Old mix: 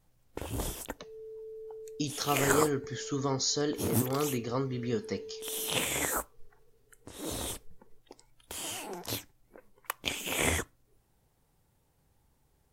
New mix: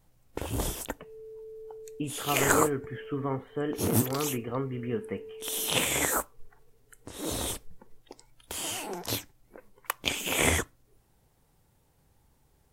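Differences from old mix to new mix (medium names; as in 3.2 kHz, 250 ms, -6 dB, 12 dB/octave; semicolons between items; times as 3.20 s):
speech: add steep low-pass 3 kHz 96 dB/octave; first sound +4.0 dB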